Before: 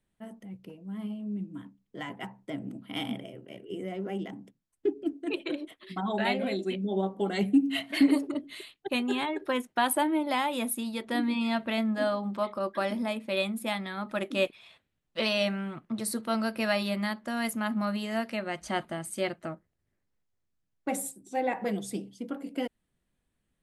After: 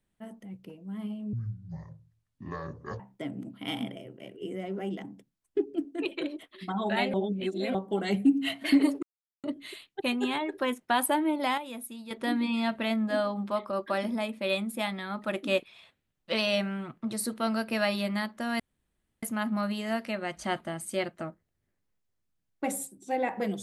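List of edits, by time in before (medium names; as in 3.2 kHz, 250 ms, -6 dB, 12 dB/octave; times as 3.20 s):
1.33–2.28 s: speed 57%
6.42–7.03 s: reverse
8.31 s: insert silence 0.41 s
10.45–10.98 s: gain -9 dB
17.47 s: insert room tone 0.63 s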